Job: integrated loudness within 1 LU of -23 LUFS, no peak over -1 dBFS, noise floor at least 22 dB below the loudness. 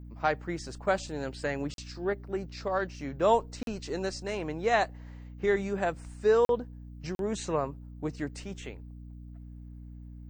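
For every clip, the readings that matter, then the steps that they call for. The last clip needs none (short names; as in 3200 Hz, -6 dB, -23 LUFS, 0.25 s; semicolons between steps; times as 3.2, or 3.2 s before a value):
dropouts 4; longest dropout 42 ms; hum 60 Hz; harmonics up to 300 Hz; hum level -42 dBFS; loudness -31.0 LUFS; peak -11.0 dBFS; loudness target -23.0 LUFS
-> interpolate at 1.74/3.63/6.45/7.15, 42 ms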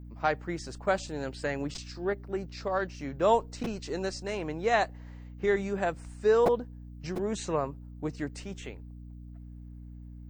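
dropouts 0; hum 60 Hz; harmonics up to 300 Hz; hum level -42 dBFS
-> notches 60/120/180/240/300 Hz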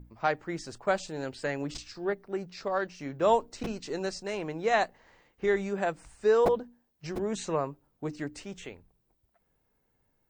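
hum none; loudness -31.0 LUFS; peak -11.5 dBFS; loudness target -23.0 LUFS
-> gain +8 dB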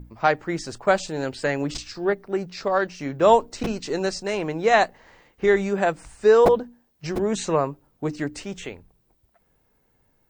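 loudness -23.0 LUFS; peak -3.5 dBFS; noise floor -67 dBFS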